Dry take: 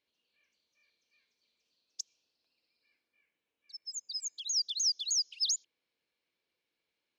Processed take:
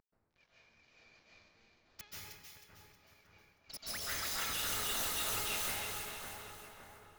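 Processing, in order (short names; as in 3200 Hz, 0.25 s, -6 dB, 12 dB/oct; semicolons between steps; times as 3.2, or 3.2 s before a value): CVSD 32 kbps; de-hum 418.6 Hz, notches 10; in parallel at 0 dB: limiter -30 dBFS, peak gain reduction 8 dB; on the sum: soft clip -22 dBFS, distortion -20 dB; vibrato 13 Hz 39 cents; wavefolder -39.5 dBFS; on a send: split-band echo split 1900 Hz, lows 0.561 s, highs 0.315 s, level -5.5 dB; on the sum: plate-style reverb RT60 1.5 s, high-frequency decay 0.65×, pre-delay 0.12 s, DRR -8 dB; mismatched tape noise reduction decoder only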